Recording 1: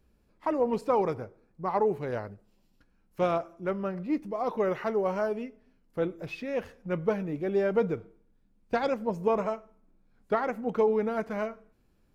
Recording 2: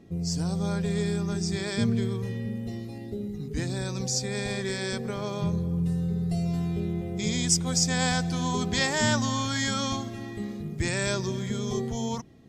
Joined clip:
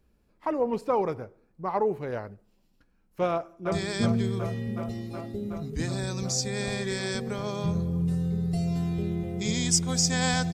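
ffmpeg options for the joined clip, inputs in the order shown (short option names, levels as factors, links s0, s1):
-filter_complex "[0:a]apad=whole_dur=10.53,atrim=end=10.53,atrim=end=3.722[s0];[1:a]atrim=start=1.498:end=8.31[s1];[s0][s1]acrossfade=d=0.004:c1=hsin:c2=hsin,asplit=2[s2][s3];[s3]afade=t=in:st=3.28:d=0.01,afade=t=out:st=3.72:d=0.01,aecho=0:1:370|740|1110|1480|1850|2220|2590|2960|3330|3700|4070|4440:0.473151|0.378521|0.302817|0.242253|0.193803|0.155042|0.124034|0.099227|0.0793816|0.0635053|0.0508042|0.0406434[s4];[s2][s4]amix=inputs=2:normalize=0"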